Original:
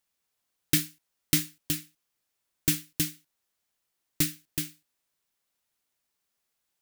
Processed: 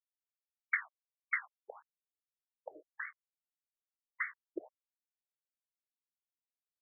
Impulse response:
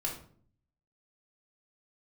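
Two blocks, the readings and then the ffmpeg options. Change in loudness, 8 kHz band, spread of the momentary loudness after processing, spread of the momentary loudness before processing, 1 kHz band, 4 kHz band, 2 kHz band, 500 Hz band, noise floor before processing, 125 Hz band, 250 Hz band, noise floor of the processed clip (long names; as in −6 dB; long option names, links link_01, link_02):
−10.5 dB, below −40 dB, 20 LU, 8 LU, +5.0 dB, below −40 dB, +2.5 dB, −3.5 dB, −81 dBFS, below −40 dB, −21.5 dB, below −85 dBFS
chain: -af "lowshelf=frequency=220:gain=10.5,aeval=exprs='val(0)*gte(abs(val(0)),0.0141)':channel_layout=same,afftfilt=real='re*between(b*sr/1024,470*pow(1600/470,0.5+0.5*sin(2*PI*1.7*pts/sr))/1.41,470*pow(1600/470,0.5+0.5*sin(2*PI*1.7*pts/sr))*1.41)':imag='im*between(b*sr/1024,470*pow(1600/470,0.5+0.5*sin(2*PI*1.7*pts/sr))/1.41,470*pow(1600/470,0.5+0.5*sin(2*PI*1.7*pts/sr))*1.41)':win_size=1024:overlap=0.75,volume=6.5dB"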